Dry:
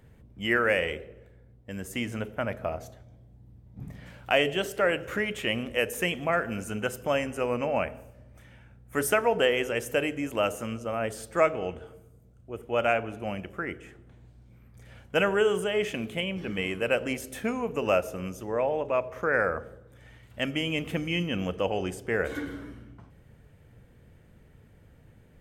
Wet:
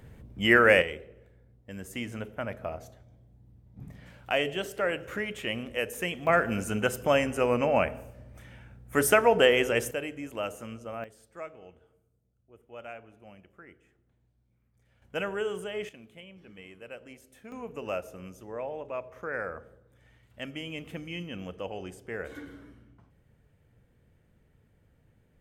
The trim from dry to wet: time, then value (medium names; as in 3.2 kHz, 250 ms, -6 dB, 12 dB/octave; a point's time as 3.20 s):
+5 dB
from 0.82 s -4 dB
from 6.27 s +3 dB
from 9.91 s -7 dB
from 11.04 s -18 dB
from 15.02 s -8 dB
from 15.89 s -18 dB
from 17.52 s -9 dB